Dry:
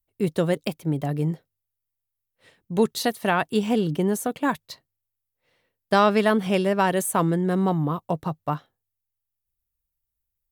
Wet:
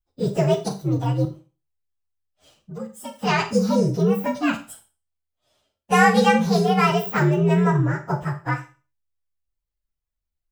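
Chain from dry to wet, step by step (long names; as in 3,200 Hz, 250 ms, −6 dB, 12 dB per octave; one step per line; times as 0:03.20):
partials spread apart or drawn together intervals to 125%
0:01.25–0:03.19: downward compressor 3 to 1, threshold −42 dBFS, peak gain reduction 18.5 dB
four-comb reverb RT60 0.33 s, combs from 28 ms, DRR 7.5 dB
level +5 dB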